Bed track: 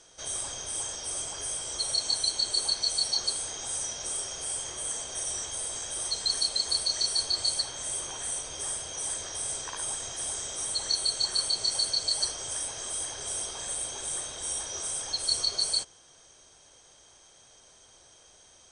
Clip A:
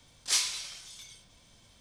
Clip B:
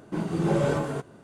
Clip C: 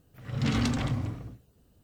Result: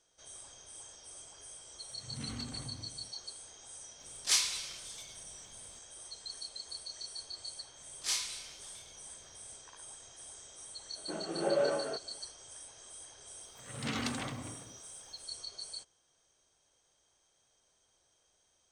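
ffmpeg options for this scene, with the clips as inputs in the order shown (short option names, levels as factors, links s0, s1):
-filter_complex "[3:a]asplit=2[s0][s1];[1:a]asplit=2[s2][s3];[0:a]volume=0.15[s4];[s3]asplit=2[s5][s6];[s6]adelay=34,volume=0.596[s7];[s5][s7]amix=inputs=2:normalize=0[s8];[2:a]highpass=470,equalizer=f=610:t=q:w=4:g=6,equalizer=f=980:t=q:w=4:g=-10,equalizer=f=2200:t=q:w=4:g=-7,lowpass=f=3100:w=0.5412,lowpass=f=3100:w=1.3066[s9];[s1]highpass=f=480:p=1[s10];[s0]atrim=end=1.83,asetpts=PTS-STARTPTS,volume=0.15,afade=t=in:d=0.004:c=hsin,afade=t=out:st=1.826:d=0.004:c=hsin,adelay=1750[s11];[s2]atrim=end=1.8,asetpts=PTS-STARTPTS,volume=0.891,afade=t=in:d=0.004:c=hsin,afade=t=out:st=1.796:d=0.004:c=hsin,adelay=3990[s12];[s8]atrim=end=1.8,asetpts=PTS-STARTPTS,volume=0.422,afade=t=in:d=0.004:c=hsin,afade=t=out:st=1.796:d=0.004:c=hsin,adelay=7760[s13];[s9]atrim=end=1.23,asetpts=PTS-STARTPTS,volume=0.668,afade=t=in:d=0.004:c=hsin,afade=t=out:st=1.226:d=0.004:c=hsin,adelay=10960[s14];[s10]atrim=end=1.83,asetpts=PTS-STARTPTS,volume=0.708,afade=t=in:d=0.004:c=hsin,afade=t=out:st=1.826:d=0.004:c=hsin,adelay=13410[s15];[s4][s11][s12][s13][s14][s15]amix=inputs=6:normalize=0"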